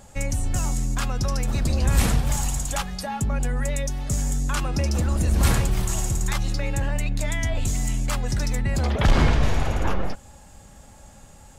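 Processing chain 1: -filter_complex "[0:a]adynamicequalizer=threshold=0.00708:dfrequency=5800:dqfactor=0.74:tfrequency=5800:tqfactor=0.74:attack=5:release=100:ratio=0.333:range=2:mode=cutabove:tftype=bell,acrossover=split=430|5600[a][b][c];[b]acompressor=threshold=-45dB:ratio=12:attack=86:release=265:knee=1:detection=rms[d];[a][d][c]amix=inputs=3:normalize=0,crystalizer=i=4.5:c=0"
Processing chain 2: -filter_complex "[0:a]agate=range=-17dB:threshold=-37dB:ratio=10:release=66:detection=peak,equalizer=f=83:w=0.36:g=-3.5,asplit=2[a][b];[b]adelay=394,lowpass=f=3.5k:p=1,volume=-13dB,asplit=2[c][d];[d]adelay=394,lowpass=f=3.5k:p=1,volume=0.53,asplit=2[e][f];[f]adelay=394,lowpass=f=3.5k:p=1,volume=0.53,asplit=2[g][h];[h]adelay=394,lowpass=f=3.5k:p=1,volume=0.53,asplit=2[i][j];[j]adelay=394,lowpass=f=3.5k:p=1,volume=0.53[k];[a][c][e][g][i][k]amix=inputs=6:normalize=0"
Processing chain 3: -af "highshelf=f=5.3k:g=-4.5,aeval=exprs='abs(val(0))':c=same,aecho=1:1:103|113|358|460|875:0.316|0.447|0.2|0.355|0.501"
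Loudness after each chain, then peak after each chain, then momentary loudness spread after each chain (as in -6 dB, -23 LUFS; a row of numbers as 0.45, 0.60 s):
-21.5, -26.5, -26.0 LUFS; -2.0, -10.0, -4.0 dBFS; 17, 7, 6 LU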